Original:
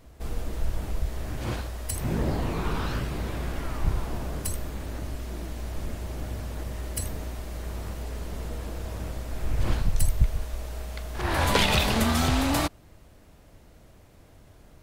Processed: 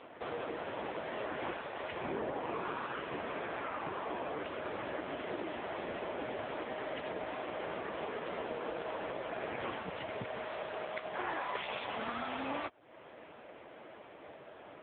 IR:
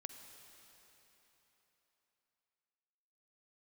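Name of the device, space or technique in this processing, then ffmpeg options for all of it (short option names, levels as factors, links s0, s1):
voicemail: -af "highpass=420,lowpass=3100,acompressor=threshold=0.00562:ratio=8,volume=4.22" -ar 8000 -c:a libopencore_amrnb -b:a 5900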